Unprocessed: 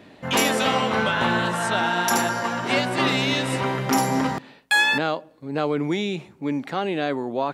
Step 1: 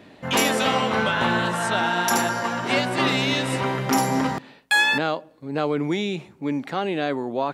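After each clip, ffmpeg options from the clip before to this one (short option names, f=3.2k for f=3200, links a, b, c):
-af anull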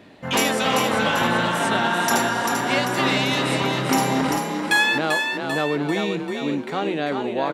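-filter_complex "[0:a]asplit=7[a][b][c][d][e][f][g];[b]adelay=392,afreqshift=36,volume=-5dB[h];[c]adelay=784,afreqshift=72,volume=-10.8dB[i];[d]adelay=1176,afreqshift=108,volume=-16.7dB[j];[e]adelay=1568,afreqshift=144,volume=-22.5dB[k];[f]adelay=1960,afreqshift=180,volume=-28.4dB[l];[g]adelay=2352,afreqshift=216,volume=-34.2dB[m];[a][h][i][j][k][l][m]amix=inputs=7:normalize=0"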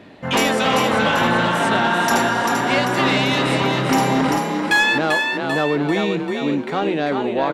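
-af "highshelf=f=6k:g=-8,aeval=exprs='0.501*sin(PI/2*1.58*val(0)/0.501)':c=same,volume=-3.5dB"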